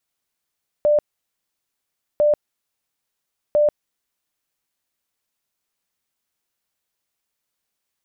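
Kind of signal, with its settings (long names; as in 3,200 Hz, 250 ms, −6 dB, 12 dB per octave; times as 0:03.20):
tone bursts 594 Hz, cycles 82, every 1.35 s, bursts 3, −12.5 dBFS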